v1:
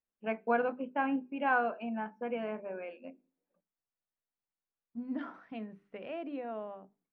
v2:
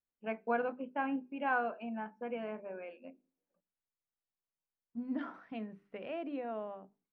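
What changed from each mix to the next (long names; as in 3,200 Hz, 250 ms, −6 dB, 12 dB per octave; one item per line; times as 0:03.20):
first voice −3.5 dB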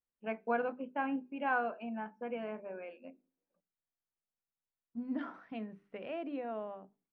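nothing changed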